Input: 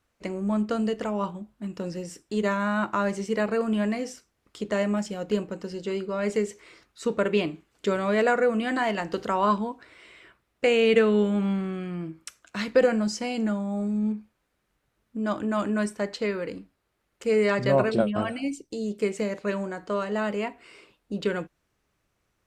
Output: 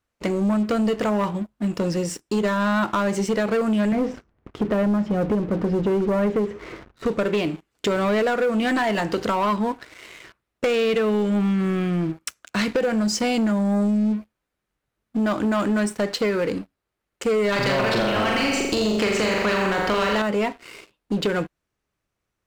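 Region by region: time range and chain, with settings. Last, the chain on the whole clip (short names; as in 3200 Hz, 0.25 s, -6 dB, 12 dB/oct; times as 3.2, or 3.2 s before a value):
3.92–7.06 G.711 law mismatch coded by mu + LPF 1600 Hz + low shelf 320 Hz +8 dB
17.52–20.22 air absorption 150 m + flutter echo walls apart 7.2 m, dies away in 0.62 s + spectral compressor 2:1
whole clip: compressor 6:1, threshold -27 dBFS; sample leveller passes 3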